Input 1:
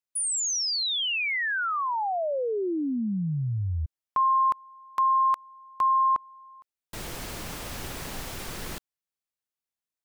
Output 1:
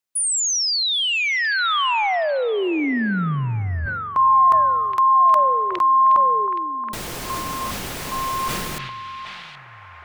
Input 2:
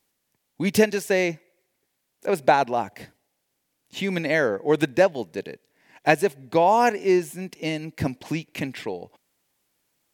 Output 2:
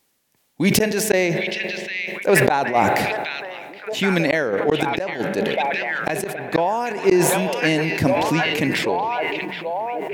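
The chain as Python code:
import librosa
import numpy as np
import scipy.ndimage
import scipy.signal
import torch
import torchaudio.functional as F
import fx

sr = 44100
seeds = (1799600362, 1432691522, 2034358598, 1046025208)

y = fx.low_shelf(x, sr, hz=83.0, db=-6.0)
y = fx.echo_stepped(y, sr, ms=772, hz=2800.0, octaves=-0.7, feedback_pct=70, wet_db=-4.0)
y = fx.rev_spring(y, sr, rt60_s=3.4, pass_ms=(43,), chirp_ms=50, drr_db=17.5)
y = fx.gate_flip(y, sr, shuts_db=-11.0, range_db=-37)
y = fx.sustainer(y, sr, db_per_s=25.0)
y = y * librosa.db_to_amplitude(6.5)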